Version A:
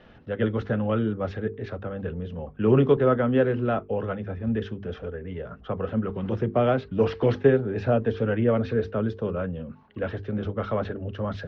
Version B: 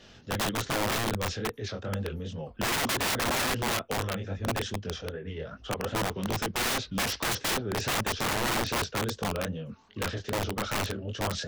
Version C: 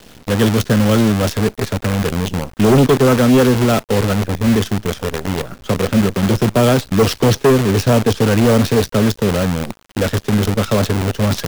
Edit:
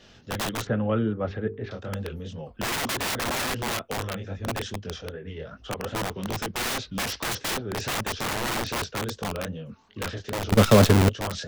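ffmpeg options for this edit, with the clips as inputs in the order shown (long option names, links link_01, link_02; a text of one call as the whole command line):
ffmpeg -i take0.wav -i take1.wav -i take2.wav -filter_complex "[1:a]asplit=3[link_01][link_02][link_03];[link_01]atrim=end=0.672[link_04];[0:a]atrim=start=0.668:end=1.712[link_05];[link_02]atrim=start=1.708:end=10.522[link_06];[2:a]atrim=start=10.518:end=11.092[link_07];[link_03]atrim=start=11.088[link_08];[link_04][link_05]acrossfade=duration=0.004:curve1=hsin:curve2=hsin[link_09];[link_09][link_06]acrossfade=duration=0.004:curve1=hsin:curve2=hsin[link_10];[link_10][link_07]acrossfade=duration=0.004:curve1=hsin:curve2=hsin[link_11];[link_11][link_08]acrossfade=duration=0.004:curve1=hsin:curve2=hsin" out.wav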